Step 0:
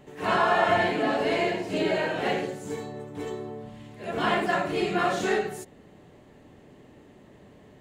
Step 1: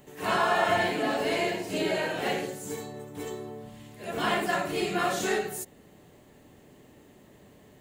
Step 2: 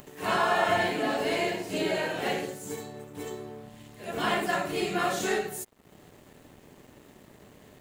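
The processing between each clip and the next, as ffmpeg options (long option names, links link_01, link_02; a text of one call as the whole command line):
ffmpeg -i in.wav -af "aemphasis=mode=production:type=50fm,volume=-2.5dB" out.wav
ffmpeg -i in.wav -af "acompressor=mode=upward:threshold=-40dB:ratio=2.5,aeval=exprs='sgn(val(0))*max(abs(val(0))-0.00224,0)':channel_layout=same" out.wav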